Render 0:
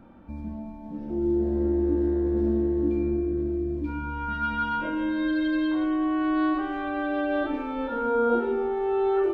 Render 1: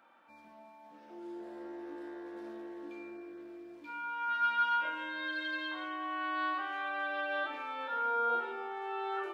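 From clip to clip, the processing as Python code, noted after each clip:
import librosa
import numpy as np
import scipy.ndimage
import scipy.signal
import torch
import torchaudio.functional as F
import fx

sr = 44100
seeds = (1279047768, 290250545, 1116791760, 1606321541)

y = scipy.signal.sosfilt(scipy.signal.butter(2, 1100.0, 'highpass', fs=sr, output='sos'), x)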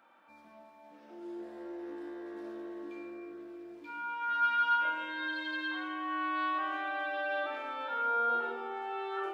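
y = fx.rev_freeverb(x, sr, rt60_s=1.7, hf_ratio=0.3, predelay_ms=50, drr_db=6.5)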